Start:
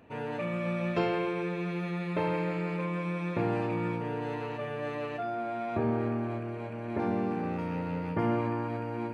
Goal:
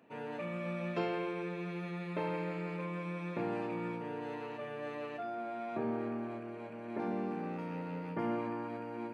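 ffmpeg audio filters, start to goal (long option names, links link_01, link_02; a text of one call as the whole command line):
ffmpeg -i in.wav -af "highpass=frequency=150:width=0.5412,highpass=frequency=150:width=1.3066,volume=-6dB" out.wav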